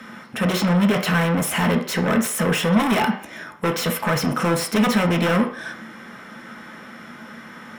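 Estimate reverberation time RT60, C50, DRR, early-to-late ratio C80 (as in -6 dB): 0.50 s, 10.5 dB, 3.5 dB, 15.0 dB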